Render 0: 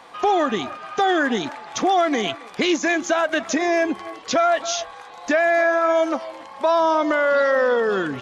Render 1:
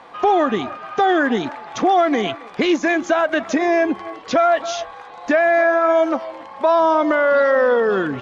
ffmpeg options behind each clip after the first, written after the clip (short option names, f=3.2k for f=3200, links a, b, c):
-af "aemphasis=mode=reproduction:type=75kf,volume=3.5dB"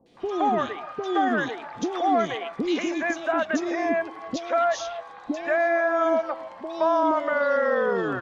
-filter_complex "[0:a]acrossover=split=460|2700[a][b][c];[c]adelay=60[d];[b]adelay=170[e];[a][e][d]amix=inputs=3:normalize=0,volume=-5.5dB"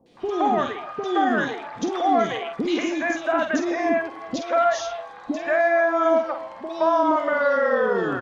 -filter_complex "[0:a]asplit=2[a][b];[b]adelay=49,volume=-7.5dB[c];[a][c]amix=inputs=2:normalize=0,volume=1.5dB"